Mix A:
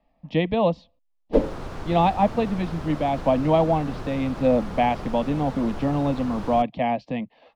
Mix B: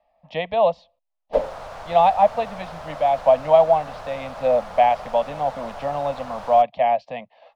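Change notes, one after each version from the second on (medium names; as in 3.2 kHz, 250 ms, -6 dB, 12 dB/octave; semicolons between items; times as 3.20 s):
master: add resonant low shelf 460 Hz -10.5 dB, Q 3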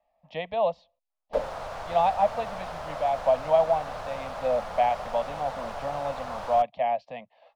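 speech -7.0 dB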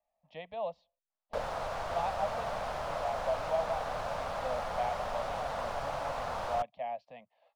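speech -11.5 dB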